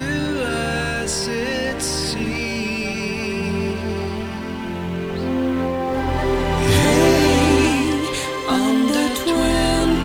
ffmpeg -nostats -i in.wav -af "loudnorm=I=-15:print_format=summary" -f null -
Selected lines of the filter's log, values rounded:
Input Integrated:    -19.3 LUFS
Input True Peak:      -2.6 dBTP
Input LRA:             6.6 LU
Input Threshold:     -29.3 LUFS